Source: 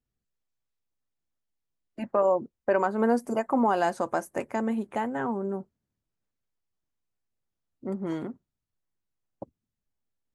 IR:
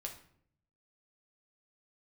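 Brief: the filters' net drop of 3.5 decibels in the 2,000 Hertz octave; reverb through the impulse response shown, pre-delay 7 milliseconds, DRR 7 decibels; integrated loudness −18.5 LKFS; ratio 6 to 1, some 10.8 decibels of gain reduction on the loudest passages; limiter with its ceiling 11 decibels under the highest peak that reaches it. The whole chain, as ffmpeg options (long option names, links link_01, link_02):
-filter_complex "[0:a]equalizer=frequency=2000:width_type=o:gain=-5,acompressor=threshold=-31dB:ratio=6,alimiter=level_in=5.5dB:limit=-24dB:level=0:latency=1,volume=-5.5dB,asplit=2[link_01][link_02];[1:a]atrim=start_sample=2205,adelay=7[link_03];[link_02][link_03]afir=irnorm=-1:irlink=0,volume=-5dB[link_04];[link_01][link_04]amix=inputs=2:normalize=0,volume=21.5dB"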